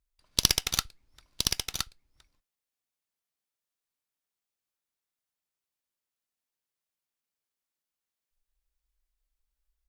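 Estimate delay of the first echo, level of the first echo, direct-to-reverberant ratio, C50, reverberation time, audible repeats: 1.017 s, -4.5 dB, none, none, none, 1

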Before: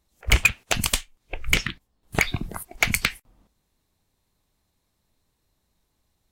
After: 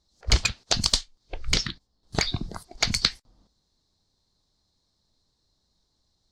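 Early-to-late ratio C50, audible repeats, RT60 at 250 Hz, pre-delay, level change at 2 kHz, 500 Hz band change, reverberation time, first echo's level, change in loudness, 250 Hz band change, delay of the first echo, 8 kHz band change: none, none, none, none, -9.0 dB, -2.0 dB, none, none, -2.0 dB, -1.5 dB, none, -1.0 dB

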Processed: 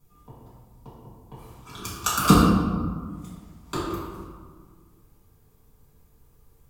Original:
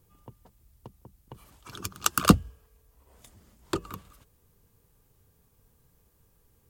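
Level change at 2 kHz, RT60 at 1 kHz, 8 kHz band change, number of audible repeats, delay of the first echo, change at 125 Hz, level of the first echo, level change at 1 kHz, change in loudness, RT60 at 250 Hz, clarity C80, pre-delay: +2.5 dB, 1.7 s, +1.5 dB, none, none, +6.0 dB, none, +6.0 dB, +3.0 dB, 2.0 s, 2.0 dB, 4 ms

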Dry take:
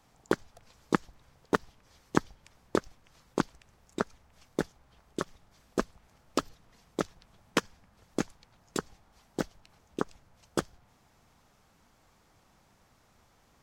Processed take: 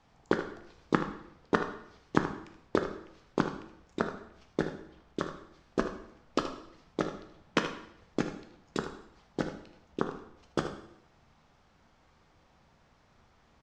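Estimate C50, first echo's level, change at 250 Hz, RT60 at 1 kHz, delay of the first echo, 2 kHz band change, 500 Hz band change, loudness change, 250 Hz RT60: 7.0 dB, -11.0 dB, +1.0 dB, 0.70 s, 77 ms, +1.0 dB, +1.0 dB, 0.0 dB, 0.75 s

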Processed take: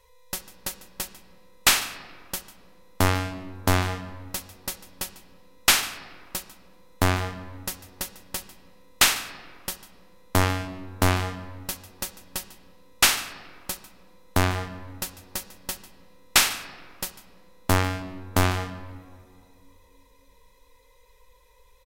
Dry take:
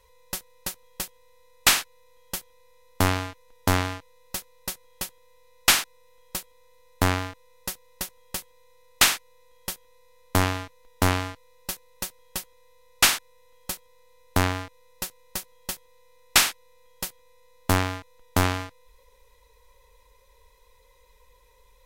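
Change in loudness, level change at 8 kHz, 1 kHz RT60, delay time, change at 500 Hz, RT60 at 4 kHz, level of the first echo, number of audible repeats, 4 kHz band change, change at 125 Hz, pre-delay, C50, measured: 0.0 dB, 0.0 dB, 1.9 s, 0.147 s, +1.0 dB, 1.1 s, -18.0 dB, 1, 0.0 dB, +1.5 dB, 3 ms, 11.5 dB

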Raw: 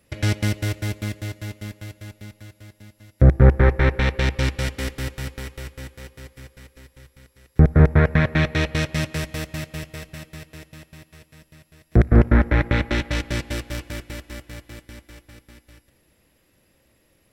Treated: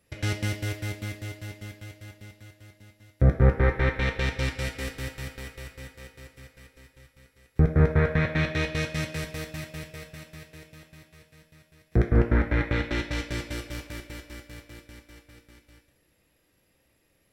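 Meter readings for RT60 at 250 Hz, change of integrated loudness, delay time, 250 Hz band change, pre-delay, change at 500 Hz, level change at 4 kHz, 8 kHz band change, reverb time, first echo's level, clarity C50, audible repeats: 0.70 s, -6.0 dB, none, -6.5 dB, 3 ms, -4.5 dB, -5.0 dB, -5.5 dB, 0.60 s, none, 9.5 dB, none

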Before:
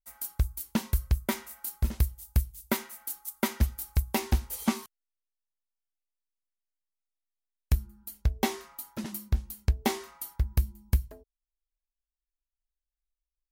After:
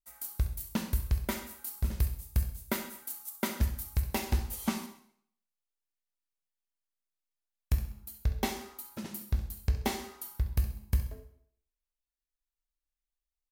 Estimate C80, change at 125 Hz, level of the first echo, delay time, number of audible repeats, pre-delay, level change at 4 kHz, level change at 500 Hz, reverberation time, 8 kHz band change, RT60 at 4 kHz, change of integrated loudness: 12.0 dB, -2.5 dB, -13.0 dB, 66 ms, 1, 6 ms, -2.5 dB, -3.5 dB, 0.65 s, -3.0 dB, 0.60 s, -3.0 dB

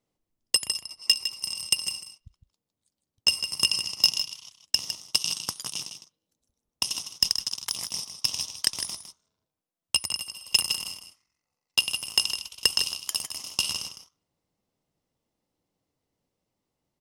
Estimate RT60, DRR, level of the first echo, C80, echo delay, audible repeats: none, none, -9.5 dB, none, 0.157 s, 1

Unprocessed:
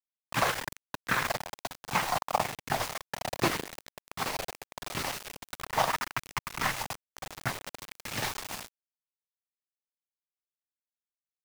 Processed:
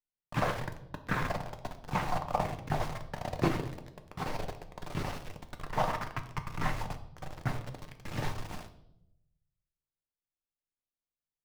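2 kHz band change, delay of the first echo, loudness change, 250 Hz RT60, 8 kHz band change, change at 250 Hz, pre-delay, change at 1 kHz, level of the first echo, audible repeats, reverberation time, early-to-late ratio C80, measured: -6.5 dB, none, -3.5 dB, 1.1 s, -13.0 dB, +2.5 dB, 5 ms, -3.5 dB, none, none, 0.85 s, 15.0 dB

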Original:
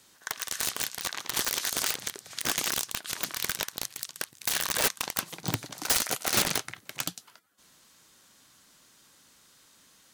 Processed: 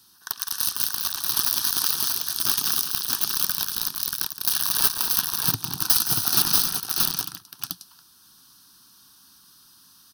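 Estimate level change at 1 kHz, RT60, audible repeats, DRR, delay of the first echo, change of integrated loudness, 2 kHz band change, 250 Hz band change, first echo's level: +2.0 dB, none, 4, none, 0.168 s, +8.0 dB, -2.0 dB, +1.5 dB, -11.5 dB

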